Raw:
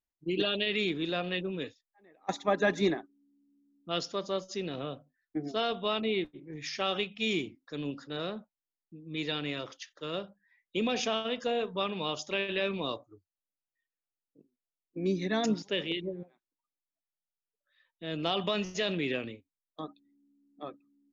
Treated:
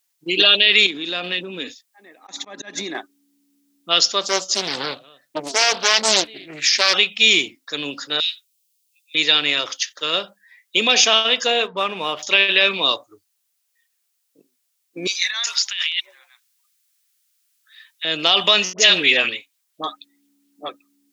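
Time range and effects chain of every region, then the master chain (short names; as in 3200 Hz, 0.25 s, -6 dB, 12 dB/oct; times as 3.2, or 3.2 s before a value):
0.86–2.95 bell 250 Hz +13 dB 0.7 oct + compressor 12:1, threshold -33 dBFS + auto swell 0.199 s
4.21–6.94 echo 0.234 s -23 dB + Doppler distortion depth 0.86 ms
8.2–9.15 steep high-pass 2400 Hz + high shelf 5200 Hz +4 dB
11.67–12.23 median filter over 9 samples + air absorption 350 m
15.07–18.05 HPF 1200 Hz 24 dB/oct + negative-ratio compressor -43 dBFS
18.73–20.69 dispersion highs, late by 55 ms, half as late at 890 Hz + LFO bell 4.3 Hz 720–3400 Hz +6 dB
whole clip: HPF 1100 Hz 6 dB/oct; high shelf 2900 Hz +10 dB; maximiser +17 dB; gain -1 dB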